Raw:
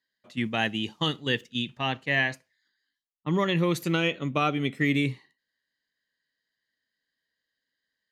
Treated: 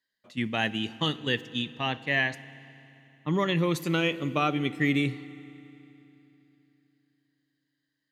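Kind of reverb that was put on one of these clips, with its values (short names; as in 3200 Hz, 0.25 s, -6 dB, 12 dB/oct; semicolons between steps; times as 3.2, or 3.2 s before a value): FDN reverb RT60 3.1 s, low-frequency decay 1.25×, high-frequency decay 0.95×, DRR 16 dB; gain -1 dB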